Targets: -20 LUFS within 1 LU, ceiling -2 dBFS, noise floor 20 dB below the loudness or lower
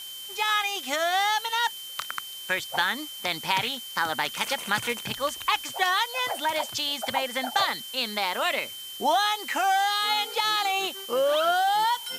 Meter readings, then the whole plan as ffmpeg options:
steady tone 3100 Hz; tone level -38 dBFS; noise floor -39 dBFS; noise floor target -46 dBFS; loudness -26.0 LUFS; peak -9.0 dBFS; loudness target -20.0 LUFS
-> -af "bandreject=f=3.1k:w=30"
-af "afftdn=nr=7:nf=-39"
-af "volume=6dB"

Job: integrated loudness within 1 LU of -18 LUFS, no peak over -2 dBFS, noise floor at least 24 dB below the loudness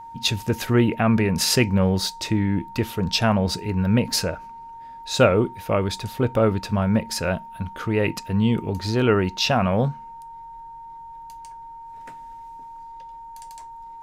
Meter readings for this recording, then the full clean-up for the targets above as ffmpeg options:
steady tone 920 Hz; tone level -37 dBFS; loudness -22.0 LUFS; peak -4.5 dBFS; loudness target -18.0 LUFS
-> -af "bandreject=f=920:w=30"
-af "volume=4dB,alimiter=limit=-2dB:level=0:latency=1"

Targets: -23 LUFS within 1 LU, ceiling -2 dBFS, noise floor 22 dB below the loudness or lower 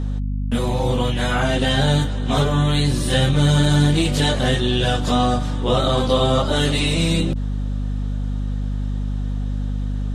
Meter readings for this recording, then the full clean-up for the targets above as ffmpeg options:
hum 50 Hz; harmonics up to 250 Hz; hum level -20 dBFS; loudness -20.0 LUFS; peak -4.5 dBFS; loudness target -23.0 LUFS
-> -af "bandreject=f=50:t=h:w=6,bandreject=f=100:t=h:w=6,bandreject=f=150:t=h:w=6,bandreject=f=200:t=h:w=6,bandreject=f=250:t=h:w=6"
-af "volume=-3dB"

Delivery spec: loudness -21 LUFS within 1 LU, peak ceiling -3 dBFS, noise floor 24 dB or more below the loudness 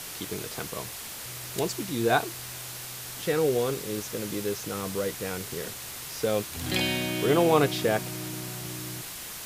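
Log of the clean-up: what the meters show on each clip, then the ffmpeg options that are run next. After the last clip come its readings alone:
noise floor -39 dBFS; noise floor target -53 dBFS; loudness -29.0 LUFS; peak -7.5 dBFS; loudness target -21.0 LUFS
-> -af "afftdn=nr=14:nf=-39"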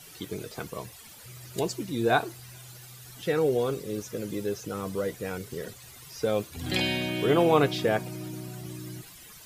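noise floor -49 dBFS; noise floor target -53 dBFS
-> -af "afftdn=nr=6:nf=-49"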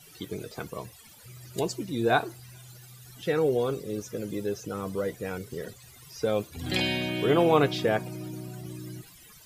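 noise floor -52 dBFS; noise floor target -53 dBFS
-> -af "afftdn=nr=6:nf=-52"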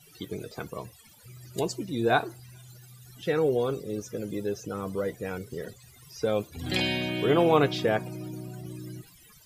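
noise floor -55 dBFS; loudness -29.0 LUFS; peak -8.0 dBFS; loudness target -21.0 LUFS
-> -af "volume=8dB,alimiter=limit=-3dB:level=0:latency=1"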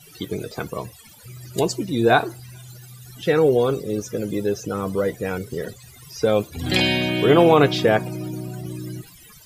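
loudness -21.0 LUFS; peak -3.0 dBFS; noise floor -47 dBFS

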